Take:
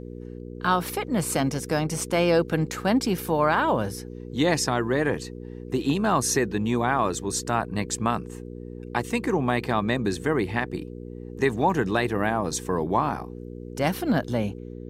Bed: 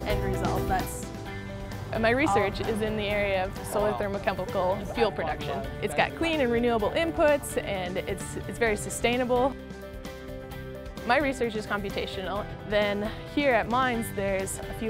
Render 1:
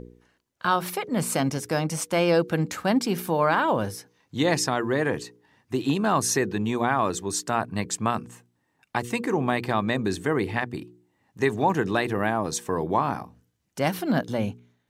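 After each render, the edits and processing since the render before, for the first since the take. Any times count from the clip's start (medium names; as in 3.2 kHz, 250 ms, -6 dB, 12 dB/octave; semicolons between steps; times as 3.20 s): de-hum 60 Hz, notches 8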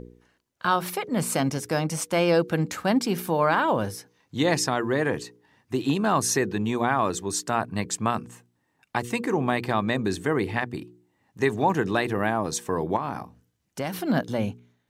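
12.96–14.04 s: compression 5:1, threshold -24 dBFS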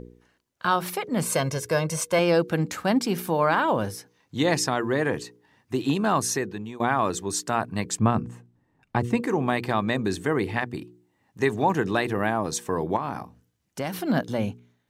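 1.25–2.19 s: comb 1.9 ms; 6.12–6.80 s: fade out, to -15.5 dB; 7.99–9.20 s: tilt EQ -3 dB/octave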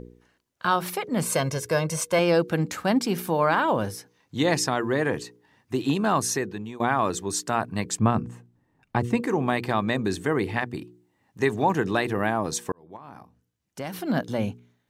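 12.72–14.41 s: fade in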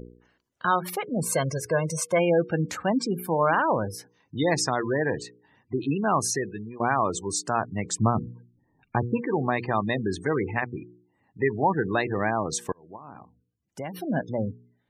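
spectral gate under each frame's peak -20 dB strong; dynamic bell 250 Hz, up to -3 dB, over -39 dBFS, Q 1.7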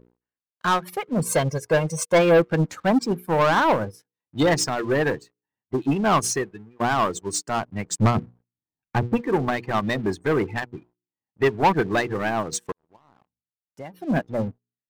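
waveshaping leveller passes 3; upward expansion 2.5:1, over -29 dBFS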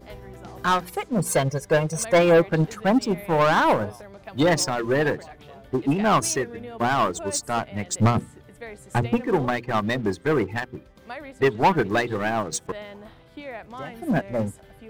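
add bed -13.5 dB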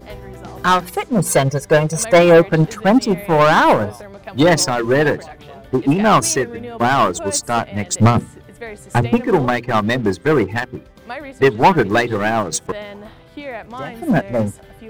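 trim +7 dB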